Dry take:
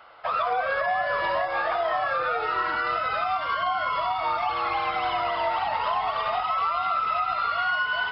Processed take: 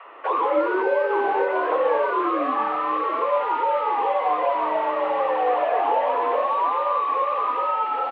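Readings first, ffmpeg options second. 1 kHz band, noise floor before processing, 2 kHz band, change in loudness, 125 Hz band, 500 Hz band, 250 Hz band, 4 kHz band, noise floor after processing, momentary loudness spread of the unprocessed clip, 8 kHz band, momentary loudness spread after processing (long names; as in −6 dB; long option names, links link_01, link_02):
+3.0 dB, −30 dBFS, −4.0 dB, +3.0 dB, below −10 dB, +8.5 dB, +15.0 dB, −8.0 dB, −26 dBFS, 2 LU, can't be measured, 2 LU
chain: -filter_complex "[0:a]acrossover=split=1400[link_01][link_02];[link_02]aeval=exprs='0.0112*(abs(mod(val(0)/0.0112+3,4)-2)-1)':channel_layout=same[link_03];[link_01][link_03]amix=inputs=2:normalize=0,highpass=frequency=370:width_type=q:width=0.5412,highpass=frequency=370:width_type=q:width=1.307,lowpass=frequency=3000:width_type=q:width=0.5176,lowpass=frequency=3000:width_type=q:width=0.7071,lowpass=frequency=3000:width_type=q:width=1.932,afreqshift=-170,highpass=frequency=280:width=0.5412,highpass=frequency=280:width=1.3066,acrossover=split=540[link_04][link_05];[link_04]adelay=50[link_06];[link_06][link_05]amix=inputs=2:normalize=0,volume=8dB"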